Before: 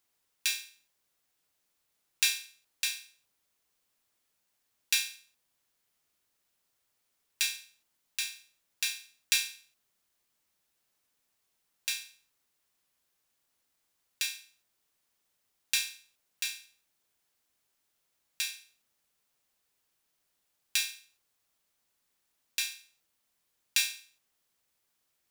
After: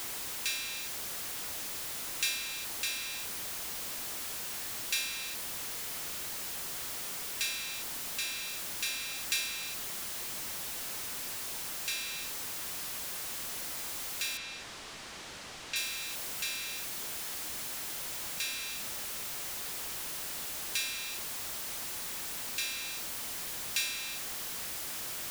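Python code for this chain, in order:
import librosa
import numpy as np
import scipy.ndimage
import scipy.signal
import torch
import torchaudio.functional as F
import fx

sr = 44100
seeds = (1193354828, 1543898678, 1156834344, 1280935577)

y = x + 0.5 * 10.0 ** (-25.0 / 20.0) * np.sign(x)
y = fx.air_absorb(y, sr, metres=92.0, at=(14.37, 15.76))
y = F.gain(torch.from_numpy(y), -7.5).numpy()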